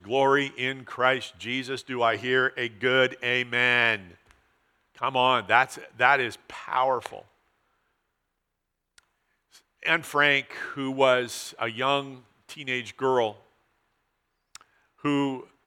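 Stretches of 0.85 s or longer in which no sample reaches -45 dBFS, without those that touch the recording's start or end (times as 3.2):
7.22–8.98
13.38–14.55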